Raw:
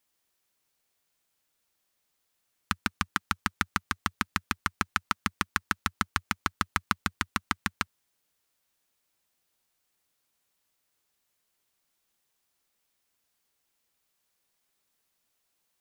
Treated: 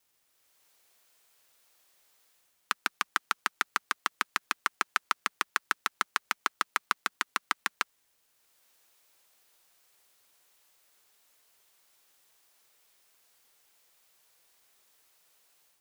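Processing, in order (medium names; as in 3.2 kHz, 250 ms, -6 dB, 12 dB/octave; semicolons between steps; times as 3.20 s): high-pass 370 Hz 24 dB/octave; in parallel at +3 dB: peak limiter -13.5 dBFS, peak gain reduction 8.5 dB; on the sum: level rider gain up to 7 dB; bit crusher 11-bit; trim -4.5 dB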